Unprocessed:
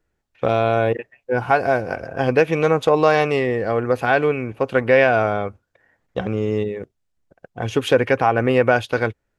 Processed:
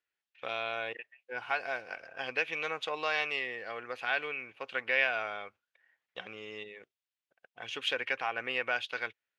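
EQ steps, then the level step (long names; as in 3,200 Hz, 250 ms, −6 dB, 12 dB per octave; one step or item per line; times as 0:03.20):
resonant band-pass 2,900 Hz, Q 1.5
−3.5 dB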